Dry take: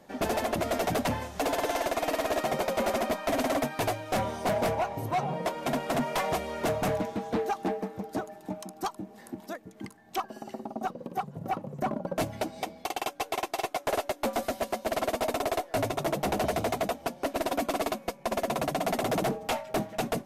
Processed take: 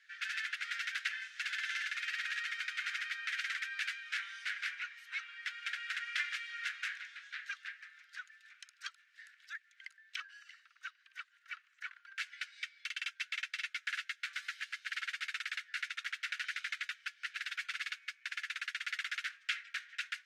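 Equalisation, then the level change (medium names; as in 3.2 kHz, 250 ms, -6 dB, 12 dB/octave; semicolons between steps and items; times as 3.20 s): steep high-pass 1.5 kHz 72 dB/octave; tape spacing loss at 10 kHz 27 dB; +7.5 dB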